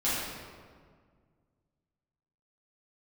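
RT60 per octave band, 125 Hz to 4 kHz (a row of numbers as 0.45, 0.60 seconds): 2.6, 2.3, 1.9, 1.7, 1.4, 1.1 seconds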